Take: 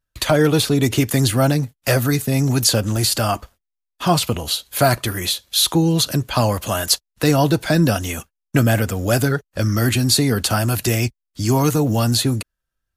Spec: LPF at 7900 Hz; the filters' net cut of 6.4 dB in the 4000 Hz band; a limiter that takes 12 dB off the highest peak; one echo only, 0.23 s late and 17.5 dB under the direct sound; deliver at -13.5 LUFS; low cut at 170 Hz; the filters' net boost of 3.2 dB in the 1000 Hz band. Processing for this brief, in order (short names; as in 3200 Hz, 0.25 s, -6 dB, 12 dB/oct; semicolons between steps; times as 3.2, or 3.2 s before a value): HPF 170 Hz; LPF 7900 Hz; bell 1000 Hz +5 dB; bell 4000 Hz -7.5 dB; limiter -13.5 dBFS; echo 0.23 s -17.5 dB; gain +11 dB